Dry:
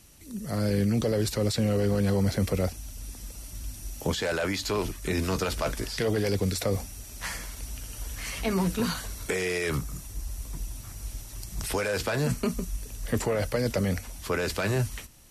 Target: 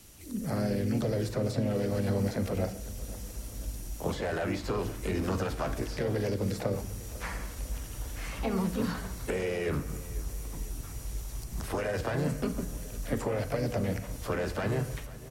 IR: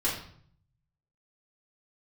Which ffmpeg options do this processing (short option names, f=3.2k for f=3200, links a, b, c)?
-filter_complex "[0:a]acrossover=split=150|1600[a][b][c];[a]acompressor=threshold=-36dB:ratio=4[d];[b]acompressor=threshold=-31dB:ratio=4[e];[c]acompressor=threshold=-48dB:ratio=4[f];[d][e][f]amix=inputs=3:normalize=0,asplit=2[g][h];[h]asetrate=52444,aresample=44100,atempo=0.840896,volume=-5dB[i];[g][i]amix=inputs=2:normalize=0,aecho=1:1:499|998|1497|1996|2495:0.119|0.0677|0.0386|0.022|0.0125,asplit=2[j][k];[1:a]atrim=start_sample=2205,adelay=37[l];[k][l]afir=irnorm=-1:irlink=0,volume=-19.5dB[m];[j][m]amix=inputs=2:normalize=0"